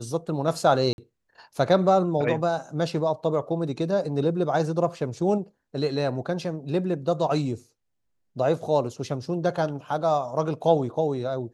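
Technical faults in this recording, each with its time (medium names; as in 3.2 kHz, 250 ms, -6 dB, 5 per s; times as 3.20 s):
0.93–0.98 s: dropout 51 ms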